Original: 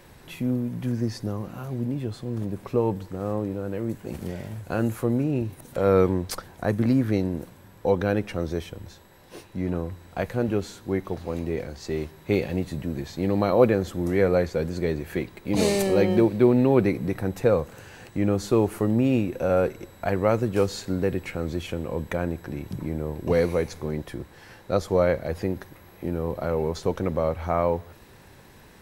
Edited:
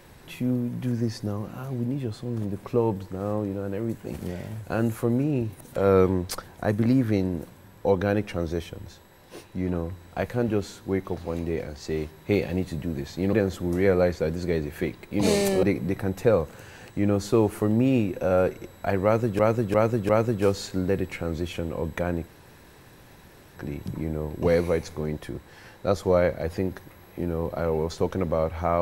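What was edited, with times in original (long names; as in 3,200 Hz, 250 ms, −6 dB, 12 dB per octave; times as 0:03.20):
0:13.33–0:13.67: remove
0:15.97–0:16.82: remove
0:20.23–0:20.58: repeat, 4 plays
0:22.41: splice in room tone 1.29 s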